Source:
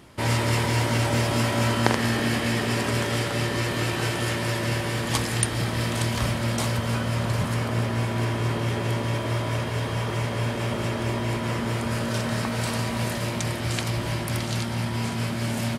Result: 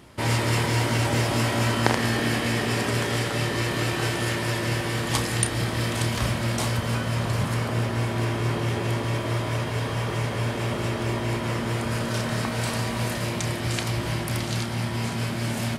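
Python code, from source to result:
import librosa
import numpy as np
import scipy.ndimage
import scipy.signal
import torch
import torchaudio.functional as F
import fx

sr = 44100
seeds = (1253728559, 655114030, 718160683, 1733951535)

y = fx.doubler(x, sr, ms=32.0, db=-10.5)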